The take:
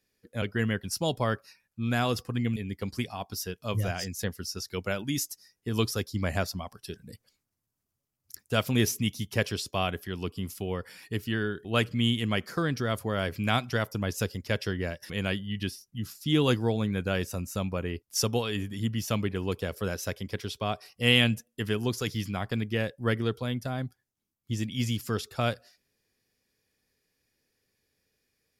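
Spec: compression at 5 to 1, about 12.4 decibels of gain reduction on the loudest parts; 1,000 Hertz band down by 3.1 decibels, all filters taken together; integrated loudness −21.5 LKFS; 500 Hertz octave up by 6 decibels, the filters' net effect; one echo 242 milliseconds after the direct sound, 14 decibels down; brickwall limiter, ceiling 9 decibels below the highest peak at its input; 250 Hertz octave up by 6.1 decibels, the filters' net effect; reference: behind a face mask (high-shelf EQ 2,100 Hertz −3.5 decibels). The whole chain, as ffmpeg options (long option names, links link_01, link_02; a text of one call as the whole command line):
ffmpeg -i in.wav -af "equalizer=frequency=250:width_type=o:gain=6,equalizer=frequency=500:width_type=o:gain=7.5,equalizer=frequency=1000:width_type=o:gain=-8,acompressor=threshold=-28dB:ratio=5,alimiter=level_in=1.5dB:limit=-24dB:level=0:latency=1,volume=-1.5dB,highshelf=frequency=2100:gain=-3.5,aecho=1:1:242:0.2,volume=15.5dB" out.wav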